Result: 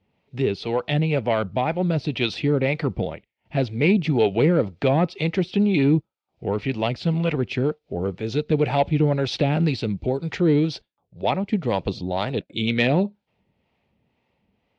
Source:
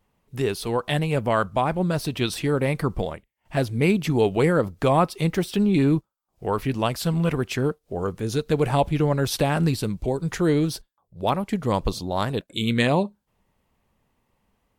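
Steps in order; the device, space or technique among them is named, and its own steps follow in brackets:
guitar amplifier with harmonic tremolo (two-band tremolo in antiphase 2 Hz, depth 50%, crossover 430 Hz; soft clipping −12 dBFS, distortion −22 dB; loudspeaker in its box 82–4,400 Hz, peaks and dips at 1,100 Hz −10 dB, 1,600 Hz −6 dB, 2,400 Hz +4 dB)
level +4.5 dB

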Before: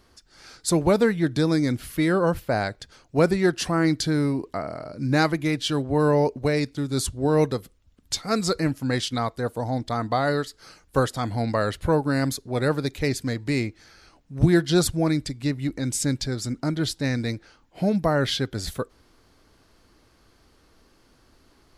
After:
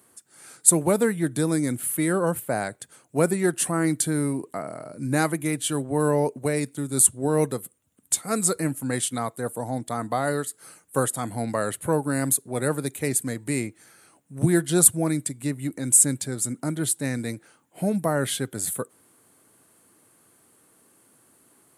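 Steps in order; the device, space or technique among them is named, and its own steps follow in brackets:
budget condenser microphone (high-pass filter 120 Hz 24 dB per octave; high shelf with overshoot 6,800 Hz +11.5 dB, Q 3)
level −2 dB

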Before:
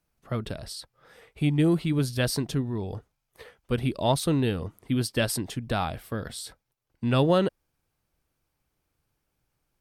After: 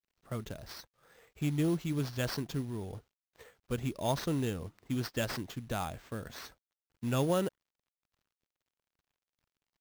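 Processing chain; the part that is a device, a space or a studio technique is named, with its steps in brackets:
early companding sampler (sample-rate reduction 10,000 Hz, jitter 0%; log-companded quantiser 6 bits)
level −8 dB

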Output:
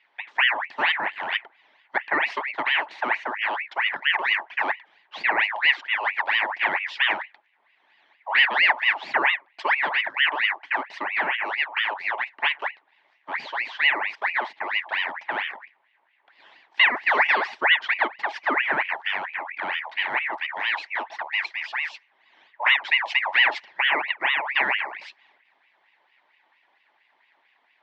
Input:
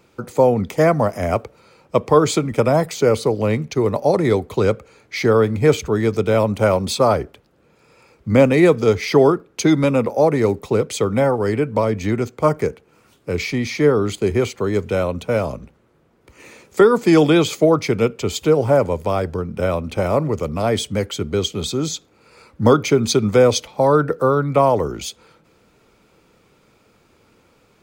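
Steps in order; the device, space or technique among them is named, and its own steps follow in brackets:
0:17.18–0:18.75: comb filter 2.2 ms, depth 59%
voice changer toy (ring modulator whose carrier an LFO sweeps 1,600 Hz, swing 55%, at 4.4 Hz; loudspeaker in its box 480–3,700 Hz, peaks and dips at 490 Hz −8 dB, 870 Hz +6 dB, 1,300 Hz −9 dB, 1,900 Hz +6 dB)
level −5.5 dB

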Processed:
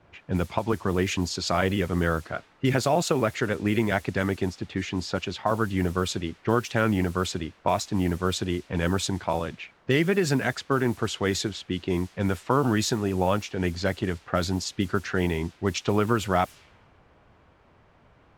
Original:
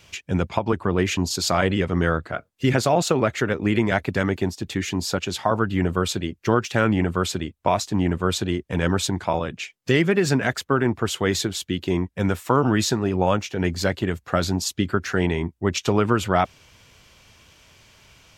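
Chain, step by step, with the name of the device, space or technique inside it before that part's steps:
cassette deck with a dynamic noise filter (white noise bed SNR 23 dB; low-pass that shuts in the quiet parts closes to 960 Hz, open at −17 dBFS)
level −3.5 dB

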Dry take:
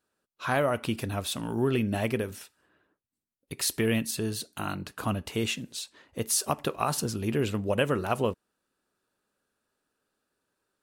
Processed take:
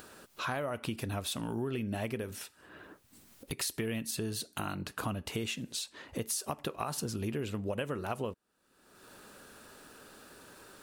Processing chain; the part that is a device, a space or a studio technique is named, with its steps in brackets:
upward and downward compression (upward compression, threshold −32 dBFS; downward compressor 6 to 1, threshold −32 dBFS, peak gain reduction 11.5 dB)

